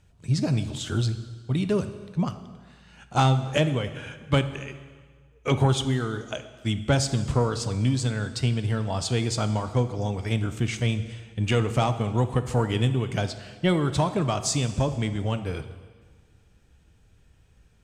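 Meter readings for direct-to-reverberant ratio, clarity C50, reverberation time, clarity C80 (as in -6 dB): 10.0 dB, 11.5 dB, 1.6 s, 13.0 dB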